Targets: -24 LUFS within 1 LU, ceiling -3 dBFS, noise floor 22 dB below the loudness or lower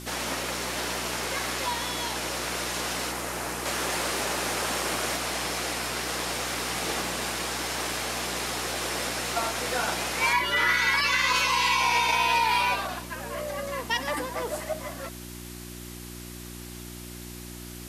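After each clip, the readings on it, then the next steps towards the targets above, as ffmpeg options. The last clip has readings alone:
hum 60 Hz; harmonics up to 360 Hz; hum level -39 dBFS; noise floor -41 dBFS; noise floor target -49 dBFS; loudness -26.5 LUFS; peak -12.5 dBFS; loudness target -24.0 LUFS
-> -af "bandreject=f=60:t=h:w=4,bandreject=f=120:t=h:w=4,bandreject=f=180:t=h:w=4,bandreject=f=240:t=h:w=4,bandreject=f=300:t=h:w=4,bandreject=f=360:t=h:w=4"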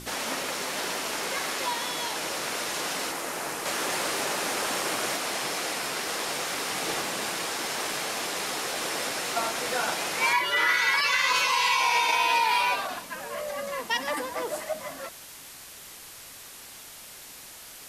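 hum none; noise floor -45 dBFS; noise floor target -49 dBFS
-> -af "afftdn=nr=6:nf=-45"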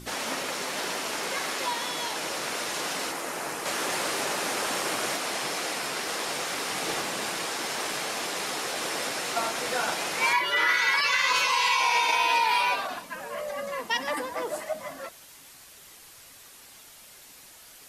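noise floor -50 dBFS; loudness -27.0 LUFS; peak -12.5 dBFS; loudness target -24.0 LUFS
-> -af "volume=3dB"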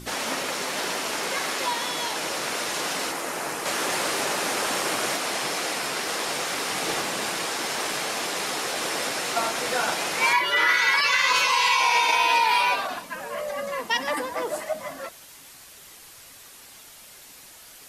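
loudness -24.0 LUFS; peak -9.5 dBFS; noise floor -47 dBFS

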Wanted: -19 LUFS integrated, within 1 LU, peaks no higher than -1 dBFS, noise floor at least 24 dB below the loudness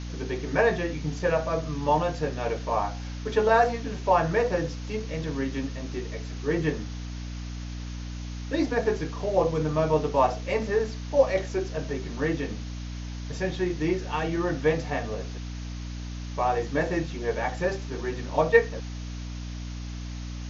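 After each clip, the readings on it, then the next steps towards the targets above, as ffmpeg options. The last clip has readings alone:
hum 60 Hz; harmonics up to 300 Hz; hum level -33 dBFS; noise floor -36 dBFS; noise floor target -52 dBFS; loudness -28.0 LUFS; peak -5.0 dBFS; loudness target -19.0 LUFS
-> -af "bandreject=f=60:t=h:w=6,bandreject=f=120:t=h:w=6,bandreject=f=180:t=h:w=6,bandreject=f=240:t=h:w=6,bandreject=f=300:t=h:w=6"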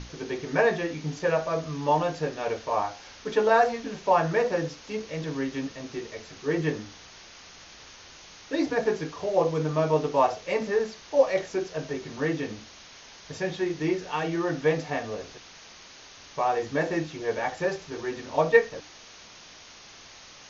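hum none; noise floor -49 dBFS; noise floor target -52 dBFS
-> -af "afftdn=nr=6:nf=-49"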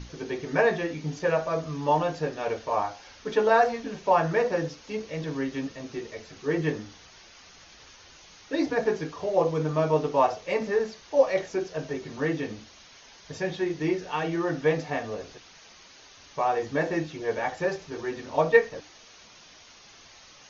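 noise floor -52 dBFS; loudness -27.5 LUFS; peak -5.5 dBFS; loudness target -19.0 LUFS
-> -af "volume=8.5dB,alimiter=limit=-1dB:level=0:latency=1"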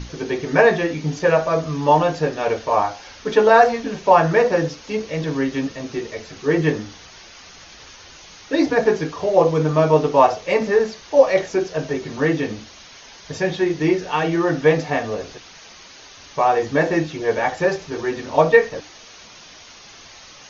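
loudness -19.0 LUFS; peak -1.0 dBFS; noise floor -43 dBFS

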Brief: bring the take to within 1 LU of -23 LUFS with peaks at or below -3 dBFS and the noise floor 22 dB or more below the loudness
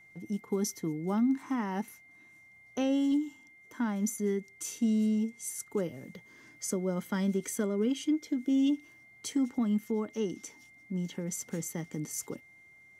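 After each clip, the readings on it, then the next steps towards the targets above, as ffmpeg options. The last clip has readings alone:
steady tone 2100 Hz; tone level -55 dBFS; loudness -32.5 LUFS; peak -19.5 dBFS; loudness target -23.0 LUFS
-> -af "bandreject=f=2.1k:w=30"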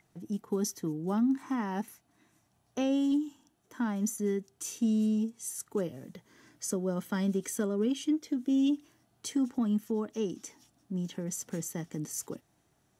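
steady tone none; loudness -32.5 LUFS; peak -19.5 dBFS; loudness target -23.0 LUFS
-> -af "volume=9.5dB"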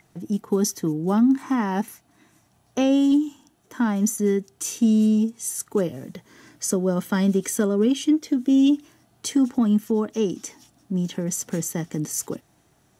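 loudness -23.0 LUFS; peak -10.0 dBFS; noise floor -62 dBFS

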